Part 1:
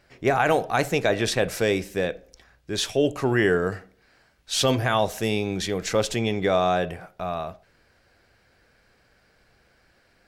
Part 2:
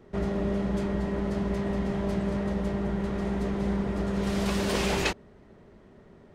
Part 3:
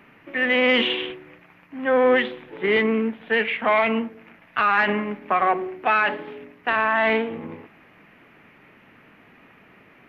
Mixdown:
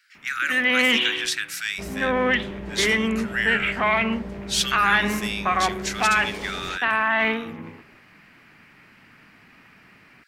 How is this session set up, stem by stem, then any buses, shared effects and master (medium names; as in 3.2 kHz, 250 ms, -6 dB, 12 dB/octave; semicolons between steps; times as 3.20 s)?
+2.0 dB, 0.00 s, no send, steep high-pass 1.3 kHz 72 dB/octave
-4.5 dB, 1.65 s, no send, peak limiter -21.5 dBFS, peak gain reduction 8 dB
+2.0 dB, 0.15 s, no send, peaking EQ 490 Hz -9 dB 1.7 oct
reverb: none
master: none